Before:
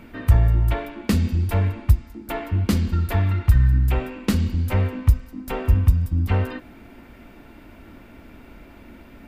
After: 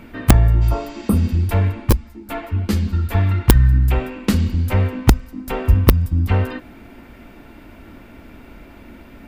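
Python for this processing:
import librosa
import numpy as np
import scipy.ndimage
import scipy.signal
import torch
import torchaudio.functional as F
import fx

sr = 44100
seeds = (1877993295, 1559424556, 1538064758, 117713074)

y = (np.mod(10.0 ** (5.0 / 20.0) * x + 1.0, 2.0) - 1.0) / 10.0 ** (5.0 / 20.0)
y = fx.spec_repair(y, sr, seeds[0], start_s=0.64, length_s=0.62, low_hz=1400.0, high_hz=8100.0, source='after')
y = fx.ensemble(y, sr, at=(1.9, 3.15))
y = y * 10.0 ** (3.5 / 20.0)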